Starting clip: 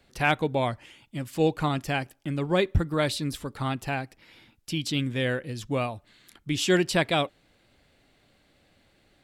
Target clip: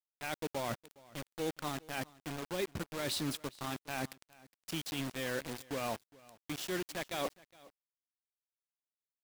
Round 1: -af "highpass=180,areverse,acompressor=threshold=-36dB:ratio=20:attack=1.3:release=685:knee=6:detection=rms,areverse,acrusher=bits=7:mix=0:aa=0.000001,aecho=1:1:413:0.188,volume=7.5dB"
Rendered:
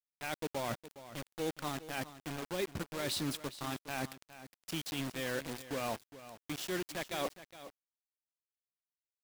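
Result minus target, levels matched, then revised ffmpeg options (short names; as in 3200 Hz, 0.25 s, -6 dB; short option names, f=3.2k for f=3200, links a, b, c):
echo-to-direct +8 dB
-af "highpass=180,areverse,acompressor=threshold=-36dB:ratio=20:attack=1.3:release=685:knee=6:detection=rms,areverse,acrusher=bits=7:mix=0:aa=0.000001,aecho=1:1:413:0.075,volume=7.5dB"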